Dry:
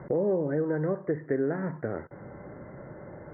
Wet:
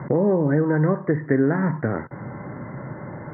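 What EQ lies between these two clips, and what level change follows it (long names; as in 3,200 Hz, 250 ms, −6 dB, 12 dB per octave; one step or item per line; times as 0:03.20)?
octave-band graphic EQ 125/250/1,000/2,000 Hz +12/+9/+11/+9 dB
0.0 dB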